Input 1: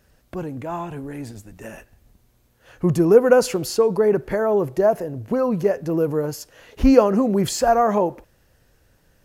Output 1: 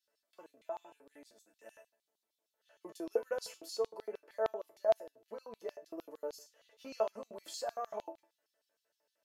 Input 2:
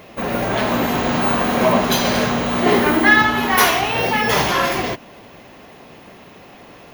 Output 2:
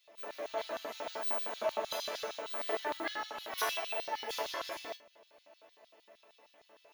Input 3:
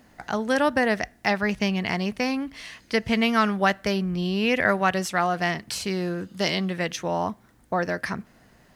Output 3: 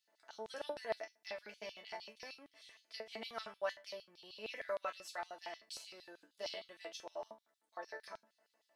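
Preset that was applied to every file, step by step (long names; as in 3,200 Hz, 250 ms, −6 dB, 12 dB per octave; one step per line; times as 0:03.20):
resonators tuned to a chord A3 sus4, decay 0.23 s
auto-filter high-pass square 6.5 Hz 530–3,800 Hz
level −5 dB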